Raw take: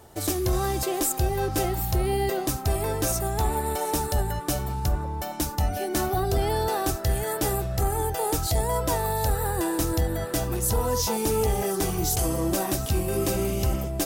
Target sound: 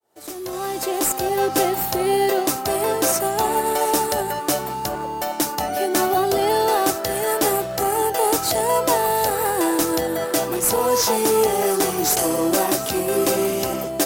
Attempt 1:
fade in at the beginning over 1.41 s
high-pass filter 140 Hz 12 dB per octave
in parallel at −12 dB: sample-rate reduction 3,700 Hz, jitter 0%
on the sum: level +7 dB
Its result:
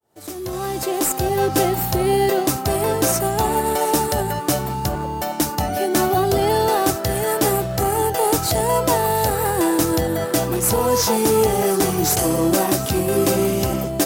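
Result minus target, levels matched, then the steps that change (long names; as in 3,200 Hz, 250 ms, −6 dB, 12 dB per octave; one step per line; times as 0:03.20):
125 Hz band +10.0 dB
change: high-pass filter 310 Hz 12 dB per octave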